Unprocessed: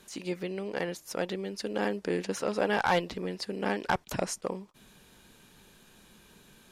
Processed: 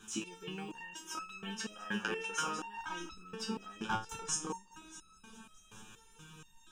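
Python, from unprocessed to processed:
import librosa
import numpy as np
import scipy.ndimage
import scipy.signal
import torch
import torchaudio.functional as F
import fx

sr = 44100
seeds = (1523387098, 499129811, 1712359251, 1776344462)

p1 = fx.spec_box(x, sr, start_s=0.84, length_s=1.68, low_hz=500.0, high_hz=3200.0, gain_db=9)
p2 = fx.over_compress(p1, sr, threshold_db=-34.0, ratio=-0.5)
p3 = p1 + (p2 * 10.0 ** (1.0 / 20.0))
p4 = fx.quant_float(p3, sr, bits=6)
p5 = fx.fixed_phaser(p4, sr, hz=3000.0, stages=8)
p6 = p5 + fx.echo_heads(p5, sr, ms=208, heads='first and third', feedback_pct=58, wet_db=-17, dry=0)
p7 = fx.resonator_held(p6, sr, hz=4.2, low_hz=110.0, high_hz=1300.0)
y = p7 * 10.0 ** (6.0 / 20.0)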